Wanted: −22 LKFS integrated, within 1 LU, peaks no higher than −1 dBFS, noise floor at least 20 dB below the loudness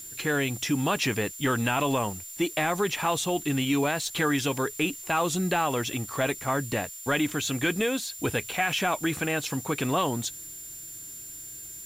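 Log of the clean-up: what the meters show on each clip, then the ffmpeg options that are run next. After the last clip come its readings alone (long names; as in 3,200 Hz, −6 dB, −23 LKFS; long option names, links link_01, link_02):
interfering tone 7,200 Hz; level of the tone −41 dBFS; background noise floor −42 dBFS; target noise floor −47 dBFS; integrated loudness −27.0 LKFS; sample peak −12.5 dBFS; target loudness −22.0 LKFS
→ -af "bandreject=frequency=7200:width=30"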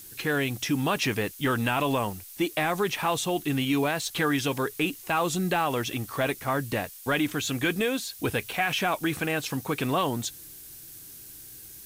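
interfering tone none found; background noise floor −46 dBFS; target noise floor −48 dBFS
→ -af "afftdn=noise_reduction=6:noise_floor=-46"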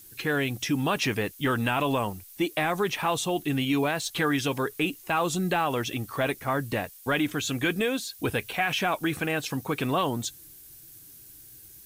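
background noise floor −49 dBFS; integrated loudness −27.5 LKFS; sample peak −13.0 dBFS; target loudness −22.0 LKFS
→ -af "volume=5.5dB"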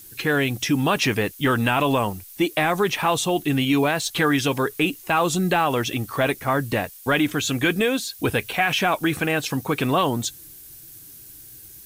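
integrated loudness −22.0 LKFS; sample peak −7.5 dBFS; background noise floor −44 dBFS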